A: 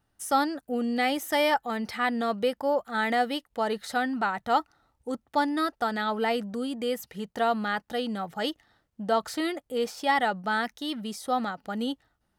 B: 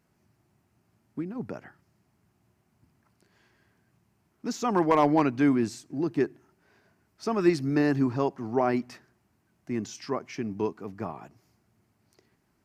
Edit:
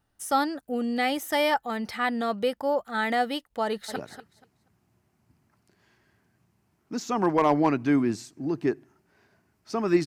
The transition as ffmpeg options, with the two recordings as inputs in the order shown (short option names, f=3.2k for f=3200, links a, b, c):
-filter_complex "[0:a]apad=whole_dur=10.06,atrim=end=10.06,atrim=end=3.962[a];[1:a]atrim=start=1.488:end=7.59[b];[a][b]acrossfade=d=0.004:c1=hsin:c2=hsin,asplit=2[c][d];[d]afade=t=in:st=3.64:d=0.01,afade=t=out:st=3.96:d=0.01,aecho=0:1:240|480|720:0.281838|0.0563677|0.0112735[e];[c][e]amix=inputs=2:normalize=0"